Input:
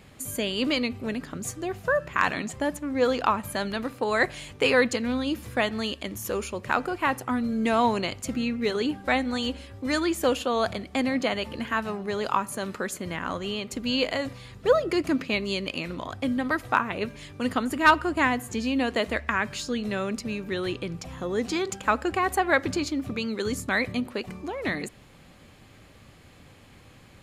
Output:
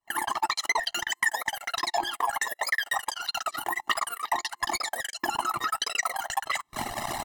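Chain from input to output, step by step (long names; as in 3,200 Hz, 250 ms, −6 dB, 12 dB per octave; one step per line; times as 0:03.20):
camcorder AGC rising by 36 dB per second
ambience of single reflections 34 ms −17.5 dB, 56 ms −12.5 dB
phase-vocoder pitch shift with formants kept +11 semitones
spectral tilt −1.5 dB per octave
mains-hum notches 50/100/150/200/250 Hz
spring reverb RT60 1.4 s, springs 32 ms, chirp 50 ms, DRR 12 dB
downward compressor 10 to 1, threshold −22 dBFS, peak gain reduction 11.5 dB
noise gate −24 dBFS, range −42 dB
low-shelf EQ 99 Hz −7 dB
change of speed 3.76×
comb filter 1 ms, depth 97%
saturating transformer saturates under 1,000 Hz
level +1.5 dB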